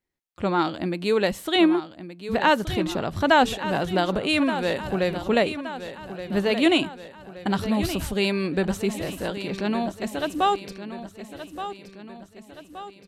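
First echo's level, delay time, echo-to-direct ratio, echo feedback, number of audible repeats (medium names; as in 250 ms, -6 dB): -11.5 dB, 1173 ms, -10.0 dB, 51%, 5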